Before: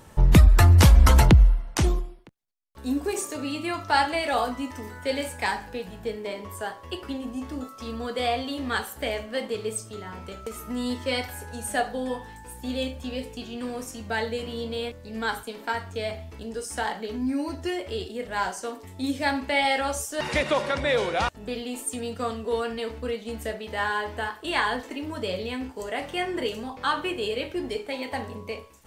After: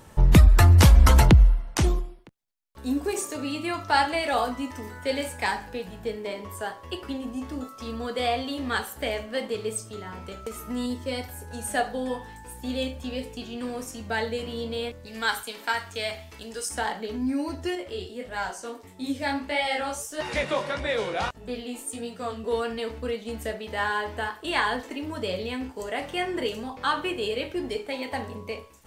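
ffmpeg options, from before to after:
ffmpeg -i in.wav -filter_complex "[0:a]asettb=1/sr,asplit=3[link_01][link_02][link_03];[link_01]atrim=end=10.864[link_04];[link_02]atrim=start=10.86:end=11.51,asetpts=PTS-STARTPTS,afade=type=in:duration=0.004:curve=qsin,afade=type=out:start_time=0.646:duration=0.004:curve=qsin,equalizer=frequency=2000:width=0.35:gain=-7.5[link_05];[link_03]atrim=start=11.506[link_06];[link_04][link_05]acrossfade=duration=0.004:curve1=hsin:curve2=qsin[link_07];[link_07][link_06]acrossfade=duration=0.004:curve1=qsin:curve2=hsin,asettb=1/sr,asplit=3[link_08][link_09][link_10];[link_08]atrim=end=15.064[link_11];[link_09]atrim=start=15.06:end=16.69,asetpts=PTS-STARTPTS,afade=type=in:duration=0.004:curve=qsin,afade=type=out:start_time=1.626:duration=0.004:curve=qsin,tiltshelf=frequency=870:gain=-6.5[link_12];[link_10]atrim=start=16.686[link_13];[link_11][link_12]acrossfade=duration=0.004:curve1=hsin:curve2=qsin[link_14];[link_14][link_13]acrossfade=duration=0.004:curve1=qsin:curve2=hsin,asettb=1/sr,asplit=3[link_15][link_16][link_17];[link_15]atrim=end=17.754[link_18];[link_16]atrim=start=17.75:end=22.44,asetpts=PTS-STARTPTS,afade=type=in:duration=0.004:curve=qsin,afade=type=out:start_time=4.686:duration=0.004:curve=qsin,flanger=delay=16:depth=6:speed=1.6[link_19];[link_17]atrim=start=22.436[link_20];[link_18][link_19]acrossfade=duration=0.004:curve1=hsin:curve2=qsin[link_21];[link_21][link_20]acrossfade=duration=0.004:curve1=qsin:curve2=hsin" out.wav

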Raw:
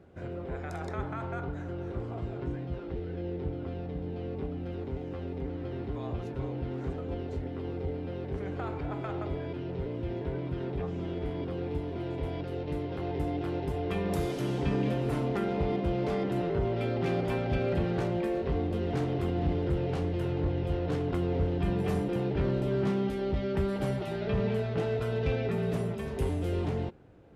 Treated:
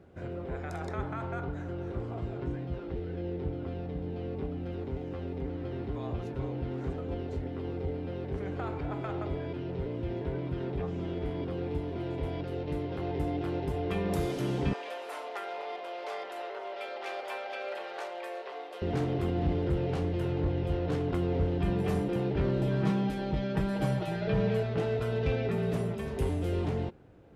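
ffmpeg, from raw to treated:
ffmpeg -i in.wav -filter_complex "[0:a]asettb=1/sr,asplit=3[link_01][link_02][link_03];[link_01]atrim=end=14.734[link_04];[link_02]atrim=start=14.73:end=18.82,asetpts=PTS-STARTPTS,afade=type=in:duration=0.004:curve=qsin,afade=type=out:start_time=4.086:duration=0.004:curve=qsin,highpass=frequency=590:width=0.5412,highpass=frequency=590:width=1.3066[link_05];[link_03]atrim=start=18.816[link_06];[link_04][link_05]acrossfade=duration=0.004:curve1=hsin:curve2=qsin[link_07];[link_07][link_06]acrossfade=duration=0.004:curve1=qsin:curve2=hsin,asettb=1/sr,asplit=3[link_08][link_09][link_10];[link_08]atrim=end=22.594[link_11];[link_09]atrim=start=22.59:end=24.63,asetpts=PTS-STARTPTS,afade=type=in:duration=0.004:curve=qsin,afade=type=out:start_time=2.036:duration=0.004:curve=qsin,aecho=1:1:6.3:0.65,atrim=end_sample=89964[link_12];[link_10]atrim=start=24.626[link_13];[link_11][link_12]acrossfade=duration=0.004:curve1=hsin:curve2=qsin[link_14];[link_14][link_13]acrossfade=duration=0.004:curve1=qsin:curve2=hsin" out.wav

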